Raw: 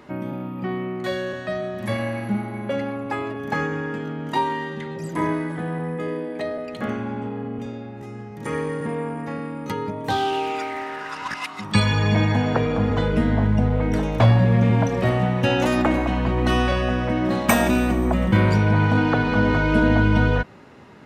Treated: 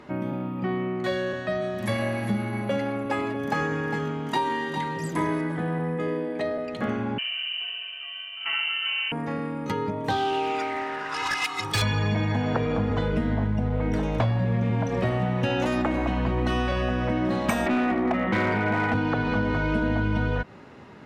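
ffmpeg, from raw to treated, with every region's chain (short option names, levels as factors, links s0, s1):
-filter_complex "[0:a]asettb=1/sr,asplit=3[s0][s1][s2];[s0]atrim=end=1.614[s3];[s1]atrim=start=1.61:end=5.41,asetpts=PTS-STARTPTS,afade=t=in:d=0.004:c=qsin,afade=t=out:st=3.796:d=0.004:c=qsin,aemphasis=mode=production:type=cd,aecho=1:1:404:0.335,atrim=end_sample=167580[s4];[s2]atrim=start=5.406[s5];[s3][s4]acrossfade=d=0.004:c1=hsin:c2=qsin[s6];[s6][s5]acrossfade=d=0.004:c1=qsin:c2=hsin,asettb=1/sr,asplit=3[s7][s8][s9];[s7]atrim=end=7.184[s10];[s8]atrim=start=7.18:end=9.12,asetpts=PTS-STARTPTS,afade=t=in:d=0.004:c=qsin,afade=t=out:st=1.936:d=0.004:c=qsin,equalizer=f=86:t=o:w=0.51:g=-13.5,lowpass=f=2700:t=q:w=0.5098,lowpass=f=2700:t=q:w=0.6013,lowpass=f=2700:t=q:w=0.9,lowpass=f=2700:t=q:w=2.563,afreqshift=-3200[s11];[s9]atrim=start=9.116[s12];[s10][s11]acrossfade=d=0.004:c1=hsin:c2=qsin[s13];[s13][s12]acrossfade=d=0.004:c1=qsin:c2=hsin,asettb=1/sr,asplit=3[s14][s15][s16];[s14]atrim=end=11.144[s17];[s15]atrim=start=11.14:end=11.82,asetpts=PTS-STARTPTS,afade=t=in:d=0.004:c=qsin,afade=t=out:st=0.676:d=0.004:c=qsin,highshelf=f=3400:g=10.5,aecho=1:1:2.4:0.86,atrim=end_sample=29988,asoftclip=type=hard:threshold=0.1[s18];[s16]atrim=start=11.816[s19];[s17][s18]acrossfade=d=0.004:c1=hsin:c2=qsin[s20];[s20][s19]acrossfade=d=0.004:c1=qsin:c2=hsin,asettb=1/sr,asplit=3[s21][s22][s23];[s21]atrim=end=17.664[s24];[s22]atrim=start=17.66:end=18.94,asetpts=PTS-STARTPTS,afade=t=in:d=0.004:c=qsin,afade=t=out:st=1.276:d=0.004:c=qsin,highpass=150,equalizer=f=160:t=q:w=4:g=-9,equalizer=f=260:t=q:w=4:g=5,equalizer=f=390:t=q:w=4:g=3,equalizer=f=740:t=q:w=4:g=8,equalizer=f=1300:t=q:w=4:g=7,equalizer=f=2000:t=q:w=4:g=10,lowpass=f=3600:w=0.5412,lowpass=f=3600:w=1.3066,asoftclip=type=hard:threshold=0.211[s25];[s23]atrim=start=18.936[s26];[s24][s25]acrossfade=d=0.004:c1=hsin:c2=qsin[s27];[s27][s26]acrossfade=d=0.004:c1=qsin:c2=hsin,highshelf=f=10000:g=-10.5,acompressor=threshold=0.0891:ratio=6"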